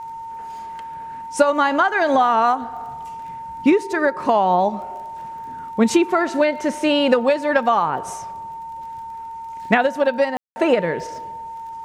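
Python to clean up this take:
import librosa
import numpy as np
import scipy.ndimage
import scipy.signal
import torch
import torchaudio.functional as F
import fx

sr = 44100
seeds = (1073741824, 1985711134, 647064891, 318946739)

y = fx.fix_declick_ar(x, sr, threshold=6.5)
y = fx.notch(y, sr, hz=910.0, q=30.0)
y = fx.fix_ambience(y, sr, seeds[0], print_start_s=9.01, print_end_s=9.51, start_s=10.37, end_s=10.56)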